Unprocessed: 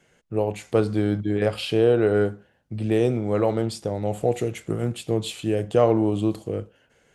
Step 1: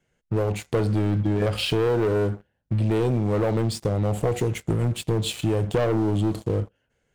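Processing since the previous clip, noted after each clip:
low-shelf EQ 130 Hz +11 dB
leveller curve on the samples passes 3
downward compressor, threshold −13 dBFS, peak gain reduction 5.5 dB
level −6.5 dB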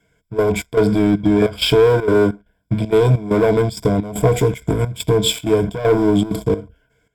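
EQ curve with evenly spaced ripples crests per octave 1.7, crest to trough 15 dB
gate pattern "xxxx.xxx..x" 195 BPM −12 dB
in parallel at −6.5 dB: hard clipping −18 dBFS, distortion −13 dB
on the sum: level +3.5 dB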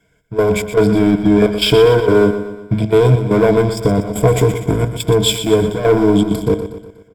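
repeating echo 121 ms, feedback 50%, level −10.5 dB
level +2.5 dB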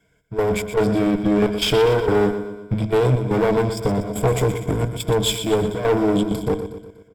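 one-sided soft clipper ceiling −15.5 dBFS
level −3.5 dB

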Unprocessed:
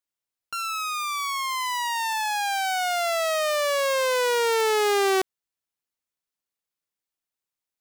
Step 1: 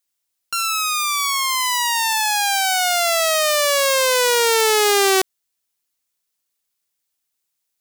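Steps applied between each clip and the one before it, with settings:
high-shelf EQ 3,000 Hz +10 dB
level +4 dB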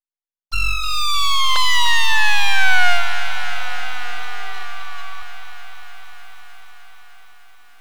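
three sine waves on the formant tracks
full-wave rectification
feedback echo at a low word length 302 ms, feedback 80%, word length 8 bits, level −12 dB
level +2 dB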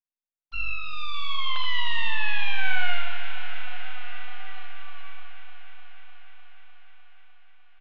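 transistor ladder low-pass 3,400 Hz, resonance 45%
single-tap delay 79 ms −7 dB
rectangular room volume 250 cubic metres, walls mixed, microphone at 0.45 metres
level −7.5 dB

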